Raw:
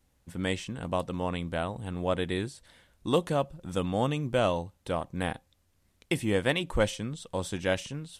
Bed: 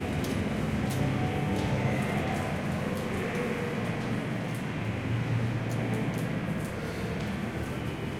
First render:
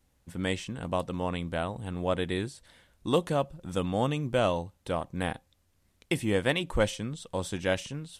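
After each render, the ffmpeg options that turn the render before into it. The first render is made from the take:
ffmpeg -i in.wav -af anull out.wav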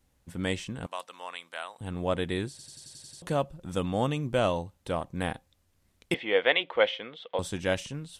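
ffmpeg -i in.wav -filter_complex "[0:a]asettb=1/sr,asplit=3[link_01][link_02][link_03];[link_01]atrim=end=0.864[link_04];[link_02]atrim=start=0.86:end=1.81,asetpts=PTS-STARTPTS,afade=type=in:duration=0.004:curve=qsin,afade=type=out:start_time=0.946:duration=0.004:curve=qsin,highpass=1100[link_05];[link_03]atrim=start=1.806[link_06];[link_04][link_05]acrossfade=duration=0.004:curve1=hsin:curve2=qsin[link_07];[link_07][link_06]acrossfade=duration=0.004:curve1=qsin:curve2=hsin,asettb=1/sr,asplit=3[link_08][link_09][link_10];[link_08]atrim=end=6.144[link_11];[link_09]atrim=start=6.14:end=7.39,asetpts=PTS-STARTPTS,afade=type=in:duration=0.004:curve=qsin,afade=type=out:start_time=1.246:duration=0.004:curve=qsin,highpass=470,equalizer=frequency=480:width_type=q:width=4:gain=7,equalizer=frequency=710:width_type=q:width=4:gain=5,equalizer=frequency=1400:width_type=q:width=4:gain=3,equalizer=frequency=2100:width_type=q:width=4:gain=9,equalizer=frequency=3300:width_type=q:width=4:gain=8,lowpass=frequency=3600:width=0.5412,lowpass=frequency=3600:width=1.3066[link_12];[link_10]atrim=start=7.386[link_13];[link_11][link_12]acrossfade=duration=0.004:curve1=hsin:curve2=qsin[link_14];[link_14][link_13]acrossfade=duration=0.004:curve1=qsin:curve2=hsin,asplit=9[link_15][link_16][link_17][link_18][link_19][link_20][link_21][link_22][link_23];[link_15]atrim=end=2.592[link_24];[link_16]atrim=start=2.498:end=2.592[link_25];[link_17]atrim=start=2.498:end=2.592[link_26];[link_18]atrim=start=2.498:end=2.592[link_27];[link_19]atrim=start=2.498:end=2.592[link_28];[link_20]atrim=start=2.498:end=2.592[link_29];[link_21]atrim=start=2.498:end=2.592[link_30];[link_22]atrim=start=2.498:end=2.592[link_31];[link_23]atrim=start=3.218[link_32];[link_24][link_25]acrossfade=duration=0.004:curve1=hsin:curve2=hsin[link_33];[link_33][link_26]acrossfade=duration=0.004:curve1=hsin:curve2=hsin[link_34];[link_34][link_27]acrossfade=duration=0.004:curve1=hsin:curve2=hsin[link_35];[link_35][link_28]acrossfade=duration=0.004:curve1=hsin:curve2=hsin[link_36];[link_36][link_29]acrossfade=duration=0.004:curve1=hsin:curve2=hsin[link_37];[link_37][link_30]acrossfade=duration=0.004:curve1=hsin:curve2=hsin[link_38];[link_38][link_31]acrossfade=duration=0.004:curve1=hsin:curve2=hsin[link_39];[link_39][link_32]acrossfade=duration=0.004:curve1=hsin:curve2=hsin" out.wav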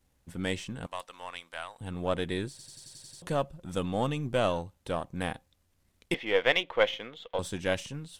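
ffmpeg -i in.wav -af "aeval=exprs='if(lt(val(0),0),0.708*val(0),val(0))':channel_layout=same" out.wav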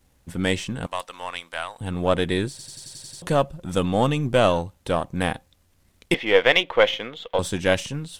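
ffmpeg -i in.wav -af "volume=9dB,alimiter=limit=-2dB:level=0:latency=1" out.wav

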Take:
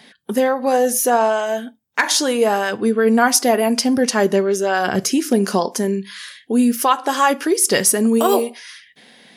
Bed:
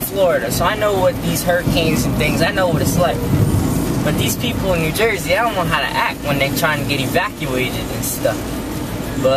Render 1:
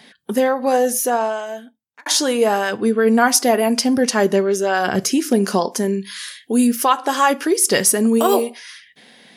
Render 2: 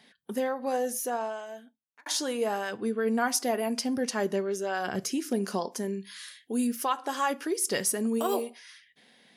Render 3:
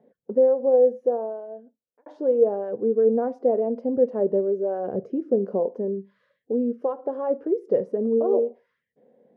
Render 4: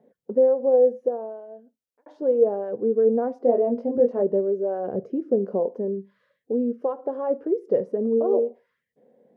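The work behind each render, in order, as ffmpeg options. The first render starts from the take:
ffmpeg -i in.wav -filter_complex "[0:a]asettb=1/sr,asplit=3[link_01][link_02][link_03];[link_01]atrim=end=6.004[link_04];[link_02]atrim=start=6:end=6.67,asetpts=PTS-STARTPTS,afade=type=in:duration=0.004:curve=qsin,afade=type=out:start_time=0.666:duration=0.004:curve=qsin,aemphasis=mode=production:type=cd[link_05];[link_03]atrim=start=6.666[link_06];[link_04][link_05]acrossfade=duration=0.004:curve1=hsin:curve2=qsin[link_07];[link_07][link_06]acrossfade=duration=0.004:curve1=qsin:curve2=hsin,asplit=2[link_08][link_09];[link_08]atrim=end=2.06,asetpts=PTS-STARTPTS,afade=type=out:start_time=0.75:duration=1.31[link_10];[link_09]atrim=start=2.06,asetpts=PTS-STARTPTS,afade=type=in:duration=0.004:curve=hsin[link_11];[link_10][link_11]concat=n=2:v=0:a=1" out.wav
ffmpeg -i in.wav -af "volume=-12.5dB" out.wav
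ffmpeg -i in.wav -af "lowpass=frequency=510:width_type=q:width=4.8" out.wav
ffmpeg -i in.wav -filter_complex "[0:a]asettb=1/sr,asplit=3[link_01][link_02][link_03];[link_01]atrim=end=1.084[link_04];[link_02]atrim=start=1.08:end=2.22,asetpts=PTS-STARTPTS,afade=type=in:duration=0.004:curve=qsin,afade=type=out:start_time=1.136:duration=0.004:curve=qsin,equalizer=frequency=500:width=0.33:gain=-4[link_05];[link_03]atrim=start=2.216[link_06];[link_04][link_05]acrossfade=duration=0.004:curve1=hsin:curve2=qsin[link_07];[link_07][link_06]acrossfade=duration=0.004:curve1=qsin:curve2=hsin,asettb=1/sr,asplit=3[link_08][link_09][link_10];[link_08]atrim=end=3.424[link_11];[link_09]atrim=start=3.42:end=4.22,asetpts=PTS-STARTPTS,afade=type=in:duration=0.004:curve=qsin,afade=type=out:start_time=0.796:duration=0.004:curve=qsin,asplit=2[link_12][link_13];[link_13]adelay=21,volume=-3.5dB[link_14];[link_12][link_14]amix=inputs=2:normalize=0,atrim=end_sample=35280[link_15];[link_10]atrim=start=4.216[link_16];[link_11][link_15]acrossfade=duration=0.004:curve1=hsin:curve2=qsin[link_17];[link_17][link_16]acrossfade=duration=0.004:curve1=qsin:curve2=hsin" out.wav

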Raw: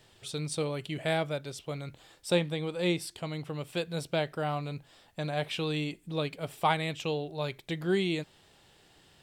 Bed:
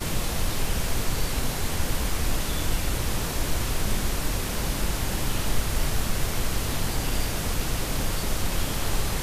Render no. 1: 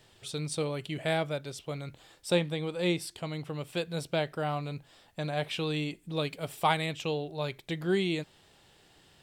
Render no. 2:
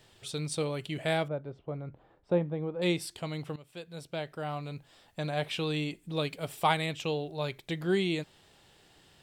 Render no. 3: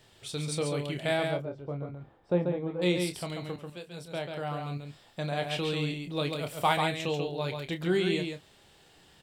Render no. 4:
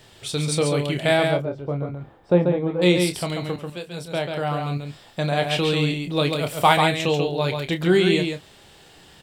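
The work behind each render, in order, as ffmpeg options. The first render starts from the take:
ffmpeg -i in.wav -filter_complex "[0:a]asettb=1/sr,asplit=3[link_01][link_02][link_03];[link_01]atrim=end=6.164[link_04];[link_02]atrim=start=6.16:end=6.86,asetpts=PTS-STARTPTS,afade=type=in:duration=0.004:curve=qsin,afade=type=out:start_time=0.696:duration=0.004:curve=qsin,highshelf=frequency=4200:gain=5[link_05];[link_03]atrim=start=6.856[link_06];[link_04][link_05]acrossfade=duration=0.004:curve1=hsin:curve2=qsin[link_07];[link_07][link_06]acrossfade=duration=0.004:curve1=qsin:curve2=hsin" out.wav
ffmpeg -i in.wav -filter_complex "[0:a]asettb=1/sr,asplit=3[link_01][link_02][link_03];[link_01]atrim=end=1.284[link_04];[link_02]atrim=start=1.28:end=2.82,asetpts=PTS-STARTPTS,afade=type=in:duration=0.004:curve=qsin,afade=type=out:start_time=1.536:duration=0.004:curve=qsin,lowpass=1000[link_05];[link_03]atrim=start=2.816[link_06];[link_04][link_05]acrossfade=duration=0.004:curve1=hsin:curve2=qsin[link_07];[link_07][link_06]acrossfade=duration=0.004:curve1=qsin:curve2=hsin,asplit=2[link_08][link_09];[link_08]atrim=end=3.56,asetpts=PTS-STARTPTS,afade=type=out:start_time=3.556:duration=0.004:curve=hsin:silence=0.158489[link_10];[link_09]atrim=start=3.56,asetpts=PTS-STARTPTS,afade=type=in:duration=1.64:silence=0.158489[link_11];[link_10][link_11]concat=n=2:v=0:a=1" out.wav
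ffmpeg -i in.wav -filter_complex "[0:a]asplit=2[link_01][link_02];[link_02]adelay=28,volume=-9dB[link_03];[link_01][link_03]amix=inputs=2:normalize=0,aecho=1:1:139:0.562" out.wav
ffmpeg -i in.wav -af "volume=9.5dB" out.wav

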